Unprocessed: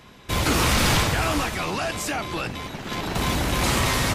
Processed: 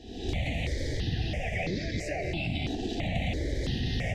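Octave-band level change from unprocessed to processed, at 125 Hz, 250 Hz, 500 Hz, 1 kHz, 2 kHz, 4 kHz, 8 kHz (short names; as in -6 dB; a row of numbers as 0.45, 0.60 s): -4.5, -6.5, -7.0, -16.0, -10.5, -11.5, -20.5 dB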